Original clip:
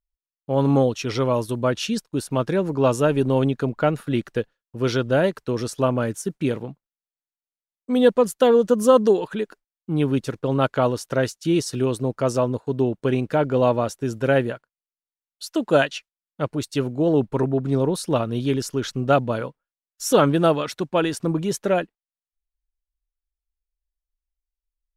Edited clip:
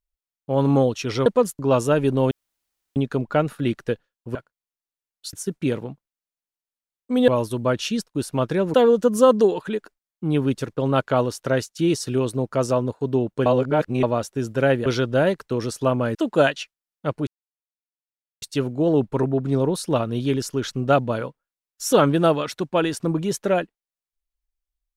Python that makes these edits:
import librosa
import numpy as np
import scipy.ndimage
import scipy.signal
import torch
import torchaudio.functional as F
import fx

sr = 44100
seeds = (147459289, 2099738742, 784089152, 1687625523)

y = fx.edit(x, sr, fx.swap(start_s=1.26, length_s=1.46, other_s=8.07, other_length_s=0.33),
    fx.insert_room_tone(at_s=3.44, length_s=0.65),
    fx.swap(start_s=4.83, length_s=1.29, other_s=14.52, other_length_s=0.98),
    fx.reverse_span(start_s=13.12, length_s=0.57),
    fx.insert_silence(at_s=16.62, length_s=1.15), tone=tone)